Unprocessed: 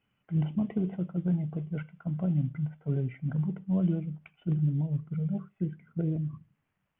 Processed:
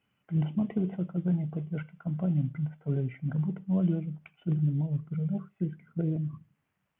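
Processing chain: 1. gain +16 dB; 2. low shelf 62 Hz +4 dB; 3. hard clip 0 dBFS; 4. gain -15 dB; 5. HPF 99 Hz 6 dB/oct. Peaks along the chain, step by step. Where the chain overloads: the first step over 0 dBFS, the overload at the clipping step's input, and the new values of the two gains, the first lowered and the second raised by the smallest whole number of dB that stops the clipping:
-2.5, -2.0, -2.0, -17.0, -17.5 dBFS; no overload

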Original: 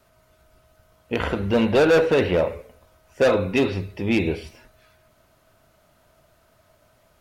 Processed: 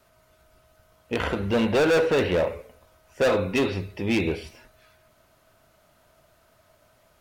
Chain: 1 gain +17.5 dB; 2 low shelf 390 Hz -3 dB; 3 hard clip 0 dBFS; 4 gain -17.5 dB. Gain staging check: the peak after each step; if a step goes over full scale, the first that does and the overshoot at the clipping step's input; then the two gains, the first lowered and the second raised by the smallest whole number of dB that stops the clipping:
+7.5, +6.0, 0.0, -17.5 dBFS; step 1, 6.0 dB; step 1 +11.5 dB, step 4 -11.5 dB

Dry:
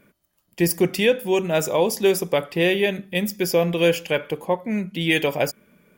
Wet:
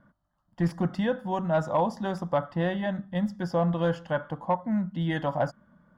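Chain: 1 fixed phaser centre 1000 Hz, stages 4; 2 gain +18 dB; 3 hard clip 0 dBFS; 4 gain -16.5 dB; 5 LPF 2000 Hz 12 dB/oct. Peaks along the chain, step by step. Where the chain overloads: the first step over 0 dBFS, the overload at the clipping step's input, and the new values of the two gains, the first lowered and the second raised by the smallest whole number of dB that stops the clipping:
-10.0, +8.0, 0.0, -16.5, -16.0 dBFS; step 2, 8.0 dB; step 2 +10 dB, step 4 -8.5 dB

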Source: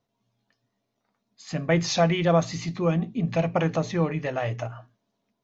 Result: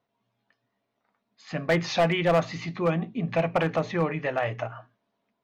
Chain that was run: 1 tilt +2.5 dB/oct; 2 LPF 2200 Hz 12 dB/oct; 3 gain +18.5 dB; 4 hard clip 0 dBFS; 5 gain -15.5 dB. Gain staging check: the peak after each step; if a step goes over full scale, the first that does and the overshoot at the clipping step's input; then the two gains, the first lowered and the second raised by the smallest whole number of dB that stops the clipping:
-9.5, -10.5, +8.0, 0.0, -15.5 dBFS; step 3, 8.0 dB; step 3 +10.5 dB, step 5 -7.5 dB

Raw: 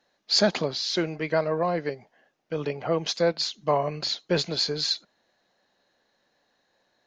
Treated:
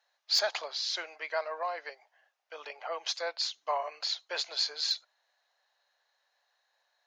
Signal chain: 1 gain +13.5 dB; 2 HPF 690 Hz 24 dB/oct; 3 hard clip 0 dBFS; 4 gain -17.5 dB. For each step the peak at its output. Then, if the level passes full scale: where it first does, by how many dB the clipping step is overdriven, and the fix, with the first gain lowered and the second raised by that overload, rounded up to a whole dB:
+4.5, +4.5, 0.0, -17.5 dBFS; step 1, 4.5 dB; step 1 +8.5 dB, step 4 -12.5 dB

